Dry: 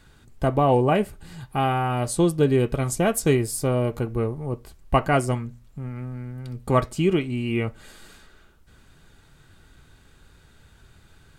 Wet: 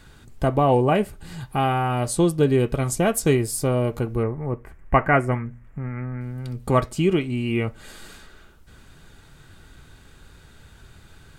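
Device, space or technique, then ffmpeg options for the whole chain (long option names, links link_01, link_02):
parallel compression: -filter_complex "[0:a]asplit=2[link_01][link_02];[link_02]acompressor=threshold=-36dB:ratio=6,volume=-2.5dB[link_03];[link_01][link_03]amix=inputs=2:normalize=0,asettb=1/sr,asplit=3[link_04][link_05][link_06];[link_04]atrim=end=4.234[link_07];[link_05]atrim=start=4.23:end=6.21,asetpts=PTS-STARTPTS,afade=type=in:duration=0.004:curve=qsin,afade=type=out:start_time=1.976:duration=0.004:curve=qsin,highshelf=frequency=2800:width_type=q:width=3:gain=-12.5[link_08];[link_06]atrim=start=6.206[link_09];[link_07][link_08]acrossfade=duration=0.004:curve1=hsin:curve2=qsin[link_10];[link_10][link_09]acrossfade=duration=0.004:curve1=qsin:curve2=hsin"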